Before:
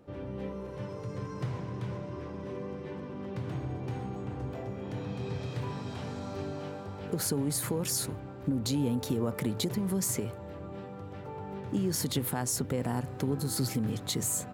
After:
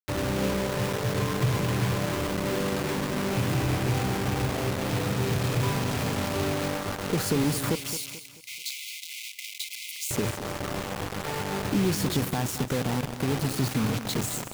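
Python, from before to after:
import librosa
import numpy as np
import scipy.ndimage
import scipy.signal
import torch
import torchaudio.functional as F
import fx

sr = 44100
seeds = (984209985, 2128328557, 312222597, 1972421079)

y = fx.rattle_buzz(x, sr, strikes_db=-35.0, level_db=-40.0)
y = fx.lowpass(y, sr, hz=3000.0, slope=6)
y = fx.rider(y, sr, range_db=5, speed_s=2.0)
y = fx.quant_dither(y, sr, seeds[0], bits=6, dither='none')
y = 10.0 ** (-22.5 / 20.0) * np.tanh(y / 10.0 ** (-22.5 / 20.0))
y = fx.brickwall_highpass(y, sr, low_hz=2000.0, at=(7.75, 10.11))
y = fx.echo_feedback(y, sr, ms=218, feedback_pct=38, wet_db=-12)
y = fx.buffer_crackle(y, sr, first_s=0.93, period_s=0.21, block=64, kind='zero')
y = y * librosa.db_to_amplitude(6.5)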